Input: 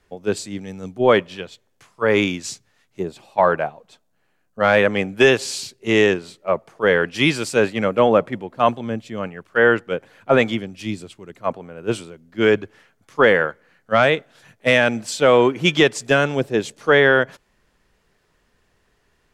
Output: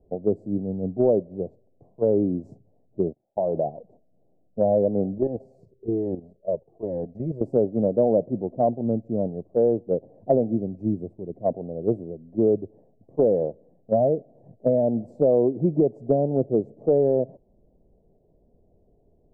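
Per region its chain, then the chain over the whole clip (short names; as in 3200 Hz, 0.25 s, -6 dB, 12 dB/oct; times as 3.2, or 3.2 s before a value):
3.07–3.67 gate -41 dBFS, range -29 dB + compressor 16:1, threshold -19 dBFS
5.18–7.41 level quantiser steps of 11 dB + cascading flanger falling 1.2 Hz
whole clip: elliptic low-pass 680 Hz, stop band 50 dB; compressor 2.5:1, threshold -26 dBFS; gain +5.5 dB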